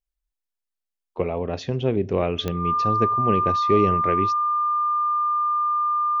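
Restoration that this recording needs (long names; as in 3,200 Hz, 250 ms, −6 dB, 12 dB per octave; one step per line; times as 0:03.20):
click removal
notch filter 1,200 Hz, Q 30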